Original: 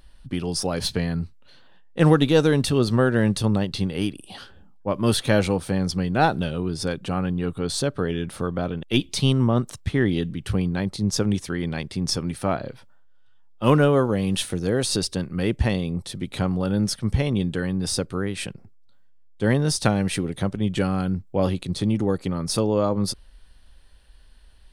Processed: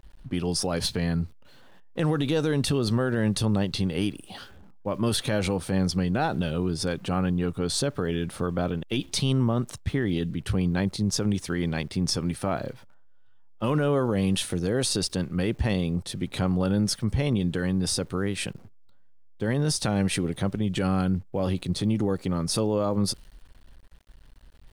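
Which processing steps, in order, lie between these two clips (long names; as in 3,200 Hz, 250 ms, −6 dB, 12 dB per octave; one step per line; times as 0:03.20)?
brickwall limiter −16 dBFS, peak gain reduction 11 dB
centre clipping without the shift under −51 dBFS
one half of a high-frequency compander decoder only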